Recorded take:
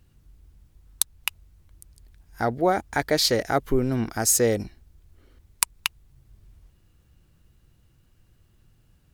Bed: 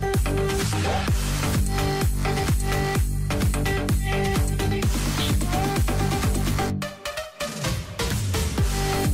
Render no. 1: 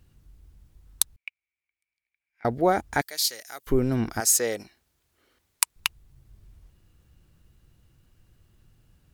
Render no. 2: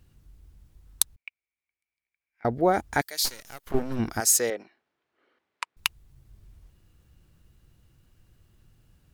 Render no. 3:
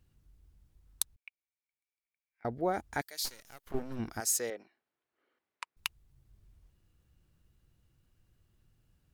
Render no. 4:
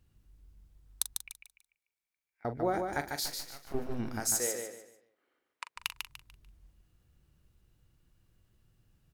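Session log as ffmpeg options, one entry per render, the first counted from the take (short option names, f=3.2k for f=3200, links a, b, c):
-filter_complex "[0:a]asettb=1/sr,asplit=3[a][b][c];[a]atrim=end=1.164[d];[b]atrim=start=1.16:end=2.45,asetpts=PTS-STARTPTS,afade=t=in:d=0.004:c=qsin,afade=t=out:st=1.286:d=0.004:c=qsin,bandpass=f=2.3k:t=q:w=16[e];[c]atrim=start=2.446[f];[d][e]acrossfade=d=0.004:c1=hsin:c2=qsin[g];[g][f]acrossfade=d=0.004:c1=qsin:c2=hsin,asettb=1/sr,asplit=3[h][i][j];[h]atrim=end=3.014[k];[i]atrim=start=3.01:end=3.67,asetpts=PTS-STARTPTS,afade=t=in:d=0.004:c=qsin,afade=t=out:st=0.656:d=0.004:c=qsin,aderivative[l];[j]atrim=start=3.666[m];[k][l]acrossfade=d=0.004:c1=hsin:c2=qsin[n];[n][m]acrossfade=d=0.004:c1=qsin:c2=hsin,asettb=1/sr,asplit=3[o][p][q];[o]atrim=end=4.204[r];[p]atrim=start=4.2:end=5.76,asetpts=PTS-STARTPTS,afade=t=in:d=0.004:c=qsin,afade=t=out:st=1.556:d=0.004:c=qsin,highpass=f=820:p=1[s];[q]atrim=start=5.756[t];[r][s]acrossfade=d=0.004:c1=hsin:c2=qsin[u];[u][t]acrossfade=d=0.004:c1=qsin:c2=hsin"
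-filter_complex "[0:a]asettb=1/sr,asplit=3[a][b][c];[a]atrim=end=1.154[d];[b]atrim=start=1.15:end=2.74,asetpts=PTS-STARTPTS,afade=t=in:d=0.004:c=qsin,afade=t=out:st=1.586:d=0.004:c=qsin,highshelf=f=2.3k:g=-6.5[e];[c]atrim=start=2.736[f];[d][e]acrossfade=d=0.004:c1=hsin:c2=qsin[g];[g][f]acrossfade=d=0.004:c1=qsin:c2=hsin,asplit=3[h][i][j];[h]afade=t=out:st=3.24:d=0.02[k];[i]aeval=exprs='max(val(0),0)':c=same,afade=t=in:st=3.24:d=0.02,afade=t=out:st=3.98:d=0.02[l];[j]afade=t=in:st=3.98:d=0.02[m];[k][l][m]amix=inputs=3:normalize=0,asettb=1/sr,asplit=3[n][o][p];[n]atrim=end=4.504[q];[o]atrim=start=4.5:end=5.77,asetpts=PTS-STARTPTS,afade=t=in:d=0.004:c=qsin,afade=t=out:st=1.266:d=0.004:c=qsin,highpass=290,lowpass=2.3k[r];[p]atrim=start=5.766[s];[q][r]acrossfade=d=0.004:c1=hsin:c2=qsin[t];[t][s]acrossfade=d=0.004:c1=qsin:c2=hsin"
-af "volume=-9.5dB"
-filter_complex "[0:a]asplit=2[a][b];[b]adelay=41,volume=-11.5dB[c];[a][c]amix=inputs=2:normalize=0,aecho=1:1:147|294|441|588:0.562|0.169|0.0506|0.0152"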